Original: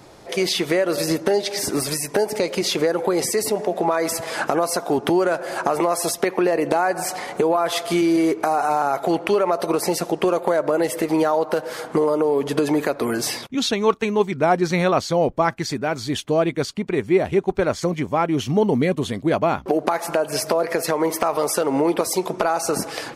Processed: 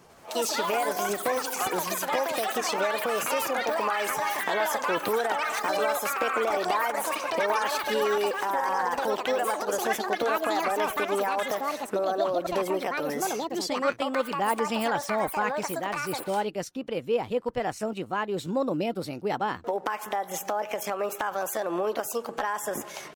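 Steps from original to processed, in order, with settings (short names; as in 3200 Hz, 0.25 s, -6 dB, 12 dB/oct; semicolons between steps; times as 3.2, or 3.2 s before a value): pitch shift +4 st; echoes that change speed 98 ms, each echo +6 st, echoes 3; gain -9 dB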